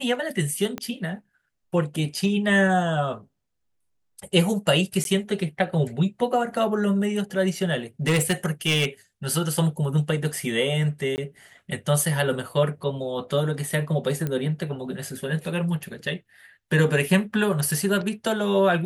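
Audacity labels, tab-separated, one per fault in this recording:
0.780000	0.780000	pop -16 dBFS
5.040000	5.050000	gap 12 ms
8.070000	8.850000	clipped -17 dBFS
11.160000	11.180000	gap 19 ms
14.270000	14.270000	pop -15 dBFS

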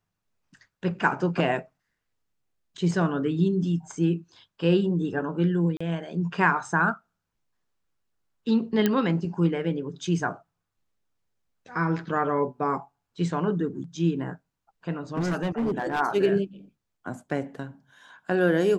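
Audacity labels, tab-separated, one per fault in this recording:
5.770000	5.800000	gap 35 ms
8.860000	8.860000	pop -9 dBFS
15.150000	16.010000	clipped -22 dBFS

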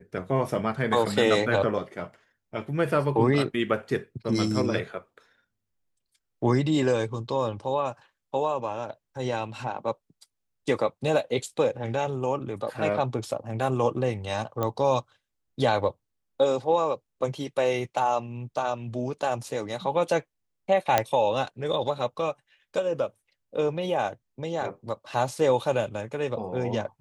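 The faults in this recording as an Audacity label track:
14.630000	14.630000	pop -14 dBFS
20.980000	20.980000	pop -6 dBFS

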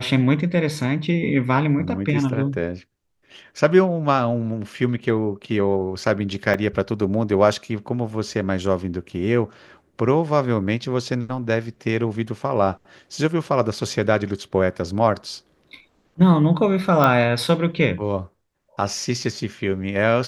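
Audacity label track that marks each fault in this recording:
6.540000	6.540000	gap 3.4 ms
17.040000	17.040000	pop -6 dBFS

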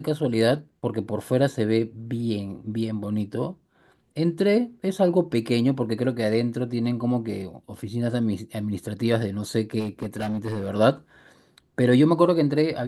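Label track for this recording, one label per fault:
9.790000	10.700000	clipped -24 dBFS

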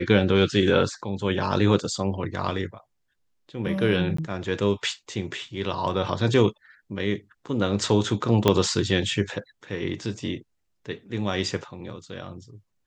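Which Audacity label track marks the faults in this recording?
4.170000	4.180000	gap 14 ms
8.480000	8.480000	pop -5 dBFS

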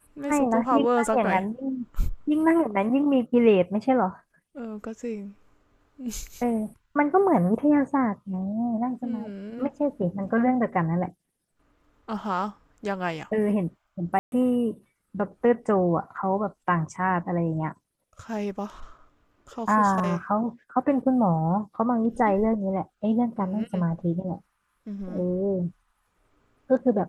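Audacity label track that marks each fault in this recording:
14.190000	14.320000	gap 0.131 s

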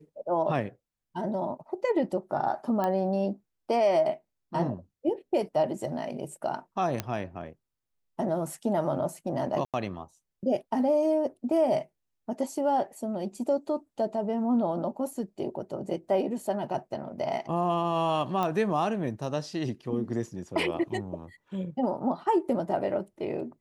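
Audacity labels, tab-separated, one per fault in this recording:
2.840000	2.840000	pop -17 dBFS
7.000000	7.000000	pop -14 dBFS
9.650000	9.740000	gap 87 ms
18.430000	18.430000	pop -17 dBFS

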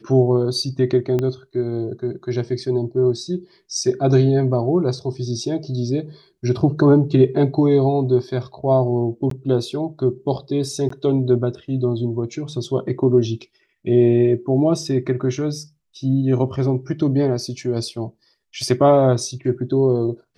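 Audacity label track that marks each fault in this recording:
1.190000	1.190000	pop -11 dBFS
9.300000	9.310000	gap 13 ms
10.890000	10.900000	gap 14 ms

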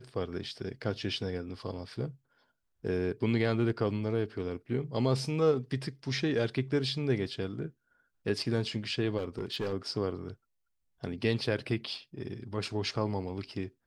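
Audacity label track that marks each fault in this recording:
9.170000	9.740000	clipped -29 dBFS

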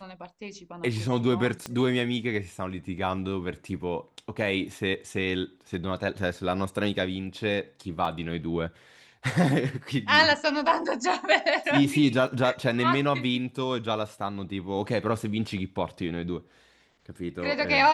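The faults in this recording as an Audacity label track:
1.660000	1.660000	pop -18 dBFS
8.050000	8.050000	gap 2.7 ms
12.270000	12.270000	gap 4.1 ms

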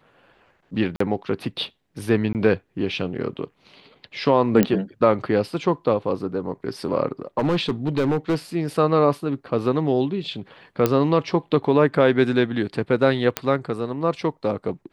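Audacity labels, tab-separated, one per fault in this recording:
0.960000	1.000000	gap 44 ms
2.330000	2.350000	gap 18 ms
4.630000	4.630000	pop -6 dBFS
7.380000	8.350000	clipped -16 dBFS
10.860000	10.860000	pop -5 dBFS
13.370000	13.370000	pop -5 dBFS

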